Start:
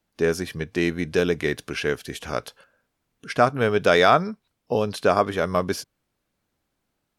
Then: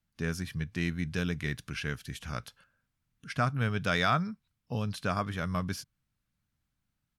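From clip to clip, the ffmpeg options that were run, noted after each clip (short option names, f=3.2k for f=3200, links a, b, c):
-af "firequalizer=gain_entry='entry(140,0);entry(380,-19);entry(1300,-8)':delay=0.05:min_phase=1"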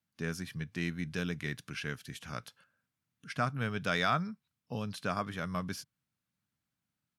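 -af "highpass=130,volume=-2.5dB"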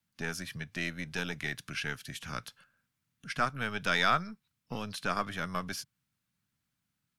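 -filter_complex "[0:a]acrossover=split=290|970[a][b][c];[a]acompressor=threshold=-45dB:ratio=6[d];[b]aeval=exprs='max(val(0),0)':c=same[e];[d][e][c]amix=inputs=3:normalize=0,volume=4.5dB"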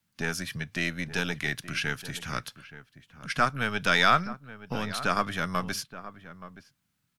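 -filter_complex "[0:a]asplit=2[a][b];[b]adelay=874.6,volume=-14dB,highshelf=f=4k:g=-19.7[c];[a][c]amix=inputs=2:normalize=0,volume=5.5dB"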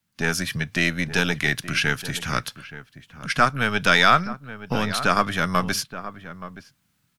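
-af "dynaudnorm=f=130:g=3:m=8dB"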